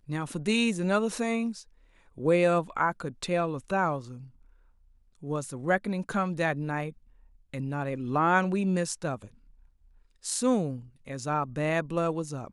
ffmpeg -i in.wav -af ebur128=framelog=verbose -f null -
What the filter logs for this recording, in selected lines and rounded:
Integrated loudness:
  I:         -28.8 LUFS
  Threshold: -39.9 LUFS
Loudness range:
  LRA:         4.1 LU
  Threshold: -50.1 LUFS
  LRA low:   -32.2 LUFS
  LRA high:  -28.1 LUFS